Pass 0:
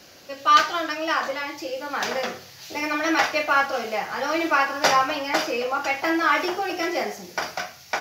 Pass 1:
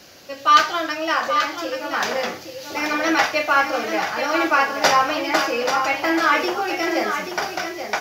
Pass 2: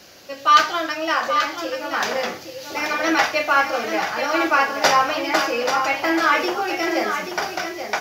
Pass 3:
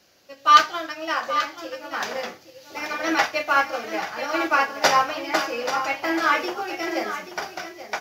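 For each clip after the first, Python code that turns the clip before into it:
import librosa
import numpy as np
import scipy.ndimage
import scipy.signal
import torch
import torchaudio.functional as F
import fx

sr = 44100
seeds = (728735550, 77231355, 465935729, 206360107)

y1 = x + 10.0 ** (-7.5 / 20.0) * np.pad(x, (int(833 * sr / 1000.0), 0))[:len(x)]
y1 = F.gain(torch.from_numpy(y1), 2.5).numpy()
y2 = fx.hum_notches(y1, sr, base_hz=50, count=6)
y3 = fx.upward_expand(y2, sr, threshold_db=-37.0, expansion=1.5)
y3 = F.gain(torch.from_numpy(y3), 1.0).numpy()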